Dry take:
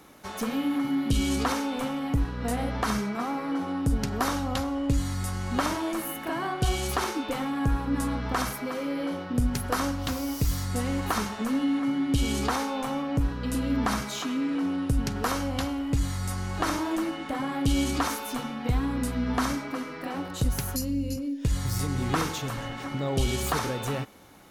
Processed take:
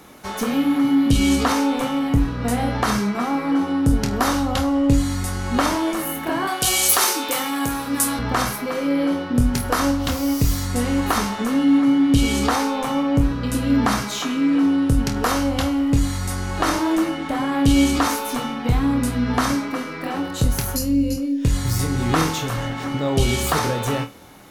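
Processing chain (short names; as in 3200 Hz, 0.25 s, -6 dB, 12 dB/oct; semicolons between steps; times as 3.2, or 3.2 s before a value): 6.47–8.19 RIAA curve recording; flutter echo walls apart 4.3 m, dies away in 0.2 s; gain +6.5 dB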